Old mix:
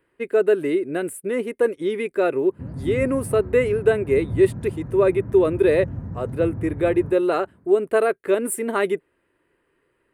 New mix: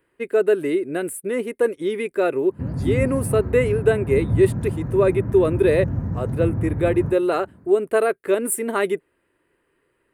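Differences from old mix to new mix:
background +6.5 dB; master: add treble shelf 7.3 kHz +5.5 dB

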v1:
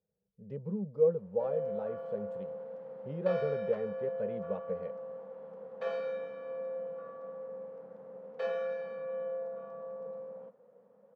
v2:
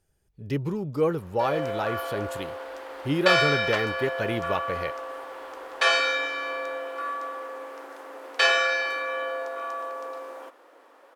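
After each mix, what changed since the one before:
background: add inverse Chebyshev high-pass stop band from 160 Hz, stop band 40 dB; master: remove two resonant band-passes 310 Hz, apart 1.3 oct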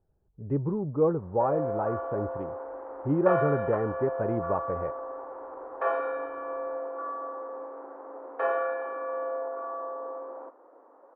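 master: add low-pass 1.1 kHz 24 dB/octave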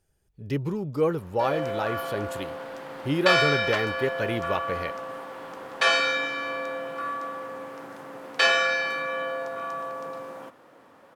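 background: remove inverse Chebyshev high-pass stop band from 160 Hz, stop band 40 dB; master: remove low-pass 1.1 kHz 24 dB/octave

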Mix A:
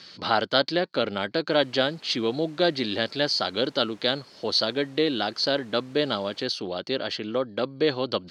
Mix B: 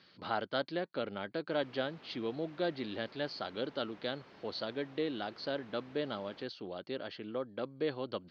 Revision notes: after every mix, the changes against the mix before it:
speech -10.5 dB; master: add distance through air 250 m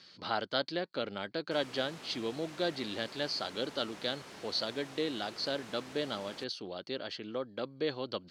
background +6.0 dB; master: remove distance through air 250 m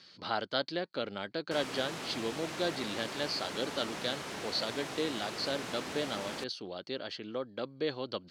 background +9.0 dB

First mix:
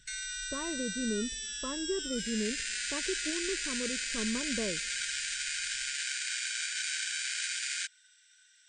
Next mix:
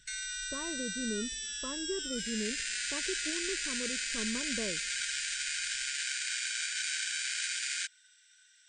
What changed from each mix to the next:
speech -3.0 dB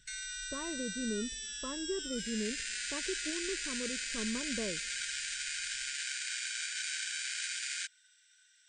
background -3.0 dB

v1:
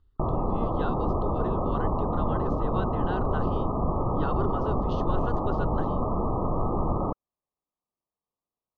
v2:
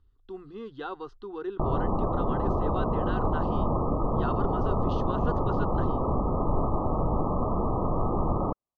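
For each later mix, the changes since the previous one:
background: entry +1.40 s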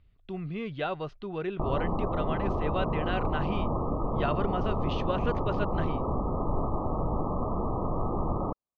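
speech: remove static phaser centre 620 Hz, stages 6; background -3.0 dB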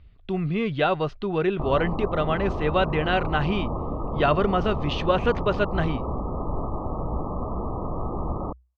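speech +9.5 dB; master: add peaking EQ 62 Hz +8.5 dB 0.23 oct

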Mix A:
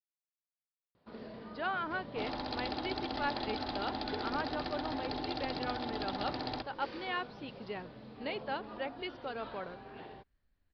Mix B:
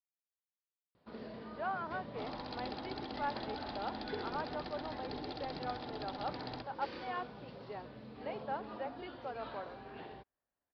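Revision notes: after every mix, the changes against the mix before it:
speech: add band-pass filter 760 Hz, Q 1.3; second sound -6.5 dB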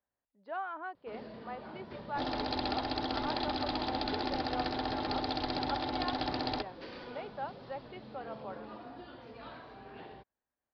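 speech: entry -1.10 s; second sound +10.5 dB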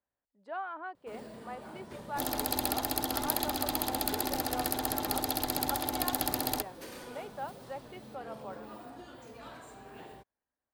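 master: remove steep low-pass 5 kHz 72 dB/octave

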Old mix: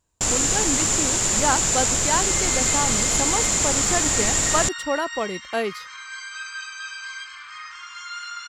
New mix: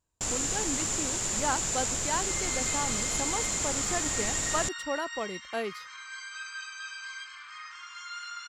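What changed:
speech -8.0 dB; first sound -9.5 dB; second sound -6.0 dB

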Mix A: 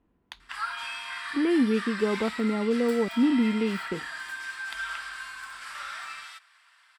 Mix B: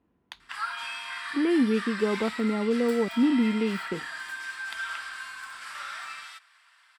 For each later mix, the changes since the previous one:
master: add high-pass 70 Hz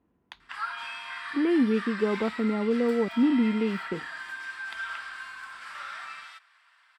master: add treble shelf 5 kHz -11.5 dB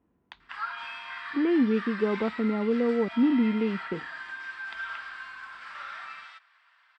master: add distance through air 110 m

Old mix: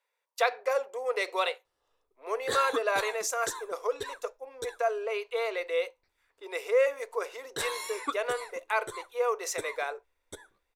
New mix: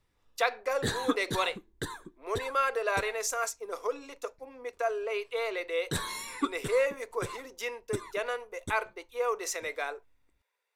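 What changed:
background: entry -1.65 s; master: add resonant low shelf 320 Hz +13.5 dB, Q 1.5

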